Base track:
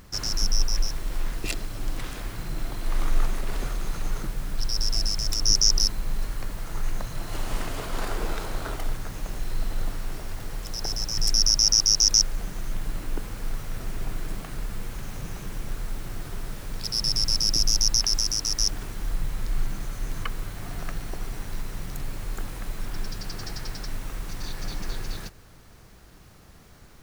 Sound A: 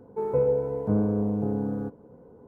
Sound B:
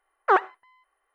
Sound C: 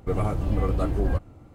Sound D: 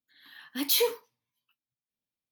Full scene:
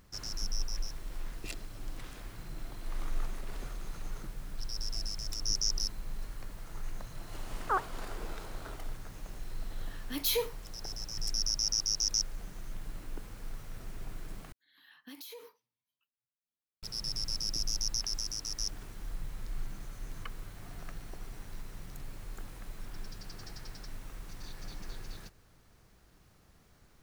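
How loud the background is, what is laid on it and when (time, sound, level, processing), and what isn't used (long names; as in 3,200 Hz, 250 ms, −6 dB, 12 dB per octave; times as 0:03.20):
base track −11.5 dB
0:07.41: mix in B −16 dB + low-pass with resonance 1,300 Hz, resonance Q 2.3
0:09.55: mix in D −5.5 dB
0:14.52: overwrite with D −9.5 dB + downward compressor 12 to 1, threshold −34 dBFS
not used: A, C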